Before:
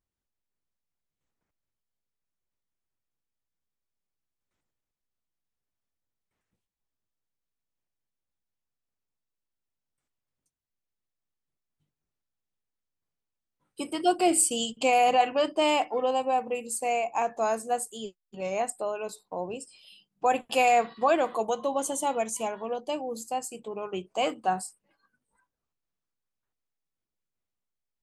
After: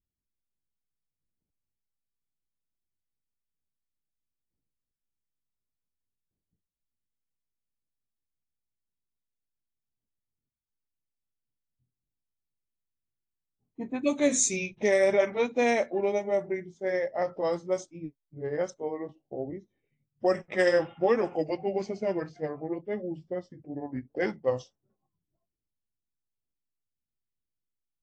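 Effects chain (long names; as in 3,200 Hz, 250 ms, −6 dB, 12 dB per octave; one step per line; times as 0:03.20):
pitch glide at a constant tempo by −7.5 semitones starting unshifted
low-pass that shuts in the quiet parts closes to 310 Hz, open at −21 dBFS
AAC 48 kbit/s 22,050 Hz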